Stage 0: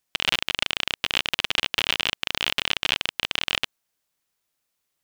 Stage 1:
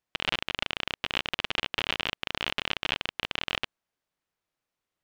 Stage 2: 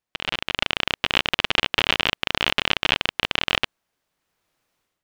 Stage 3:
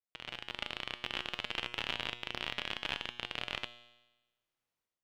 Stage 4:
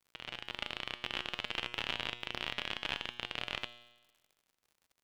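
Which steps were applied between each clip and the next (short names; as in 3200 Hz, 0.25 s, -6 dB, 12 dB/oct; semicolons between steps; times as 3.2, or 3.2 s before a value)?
LPF 1900 Hz 6 dB/oct; gain -1.5 dB
AGC gain up to 13.5 dB
resonator 120 Hz, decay 1.1 s, harmonics all, mix 70%; gain -7 dB
crackle 92/s -54 dBFS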